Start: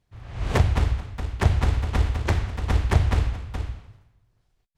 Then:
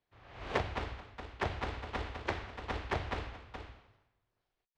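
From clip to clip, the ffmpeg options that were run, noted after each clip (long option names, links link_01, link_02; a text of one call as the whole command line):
ffmpeg -i in.wav -filter_complex "[0:a]acrossover=split=280 5100:gain=0.178 1 0.1[link_01][link_02][link_03];[link_01][link_02][link_03]amix=inputs=3:normalize=0,volume=-6.5dB" out.wav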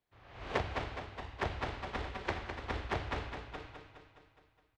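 ffmpeg -i in.wav -af "aecho=1:1:208|416|624|832|1040|1248|1456:0.398|0.231|0.134|0.0777|0.0451|0.0261|0.0152,volume=-1dB" out.wav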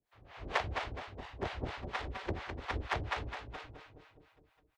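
ffmpeg -i in.wav -filter_complex "[0:a]acrossover=split=560[link_01][link_02];[link_01]aeval=exprs='val(0)*(1-1/2+1/2*cos(2*PI*4.3*n/s))':channel_layout=same[link_03];[link_02]aeval=exprs='val(0)*(1-1/2-1/2*cos(2*PI*4.3*n/s))':channel_layout=same[link_04];[link_03][link_04]amix=inputs=2:normalize=0,volume=4.5dB" out.wav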